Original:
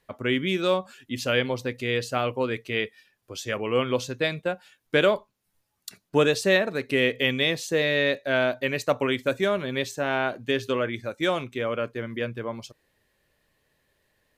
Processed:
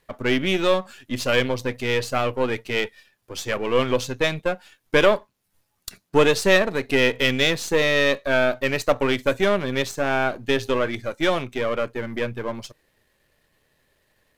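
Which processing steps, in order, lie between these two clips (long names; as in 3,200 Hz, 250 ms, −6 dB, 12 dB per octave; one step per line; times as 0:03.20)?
gain on one half-wave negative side −7 dB
level +6.5 dB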